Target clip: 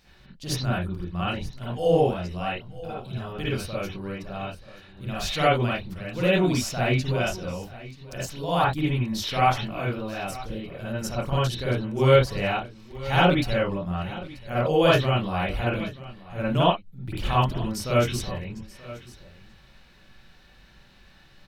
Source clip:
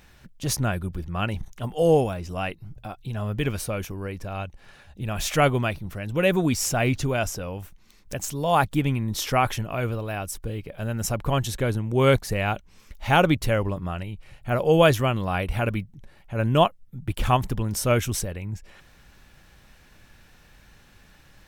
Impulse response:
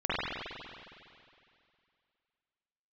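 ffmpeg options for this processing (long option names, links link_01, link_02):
-filter_complex "[0:a]equalizer=frequency=4500:width_type=o:width=0.68:gain=11,aecho=1:1:932:0.126[link_01];[1:a]atrim=start_sample=2205,afade=type=out:start_time=0.14:duration=0.01,atrim=end_sample=6615[link_02];[link_01][link_02]afir=irnorm=-1:irlink=0,volume=-8.5dB"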